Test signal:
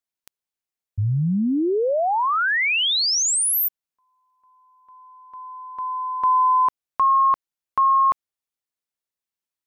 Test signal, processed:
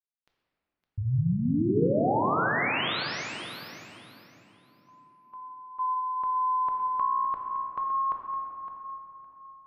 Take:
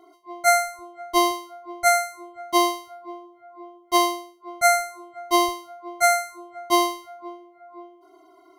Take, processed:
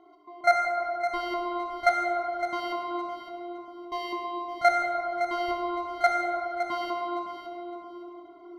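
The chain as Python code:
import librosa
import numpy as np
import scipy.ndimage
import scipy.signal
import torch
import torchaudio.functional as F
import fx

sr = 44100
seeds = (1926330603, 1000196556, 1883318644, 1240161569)

p1 = fx.high_shelf(x, sr, hz=4200.0, db=6.5)
p2 = fx.level_steps(p1, sr, step_db=14)
p3 = fx.air_absorb(p2, sr, metres=300.0)
p4 = p3 + fx.echo_feedback(p3, sr, ms=562, feedback_pct=22, wet_db=-10.5, dry=0)
y = fx.room_shoebox(p4, sr, seeds[0], volume_m3=170.0, walls='hard', distance_m=0.45)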